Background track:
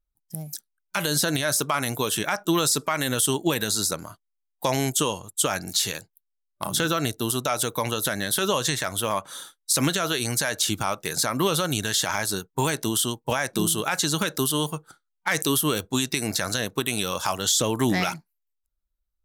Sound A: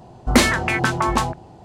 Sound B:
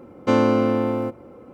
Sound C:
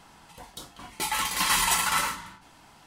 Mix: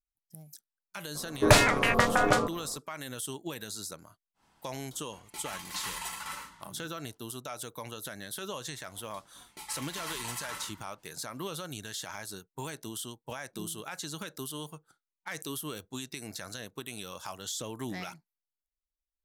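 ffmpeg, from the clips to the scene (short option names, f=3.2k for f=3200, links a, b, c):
-filter_complex "[3:a]asplit=2[a][b];[0:a]volume=-15dB[c];[1:a]aeval=exprs='val(0)*sin(2*PI*360*n/s)':c=same,atrim=end=1.64,asetpts=PTS-STARTPTS,volume=-1.5dB,afade=t=in:d=0.004:c=hsin,afade=t=out:st=1.636:d=0.004:c=hsin,adelay=1150[d];[a]atrim=end=2.86,asetpts=PTS-STARTPTS,volume=-14.5dB,afade=t=in:d=0.1,afade=t=out:st=2.76:d=0.1,adelay=4340[e];[b]atrim=end=2.86,asetpts=PTS-STARTPTS,volume=-16dB,afade=t=in:d=0.004:c=hsin,afade=t=out:st=2.856:d=0.004:c=hsin,adelay=8570[f];[c][d][e][f]amix=inputs=4:normalize=0"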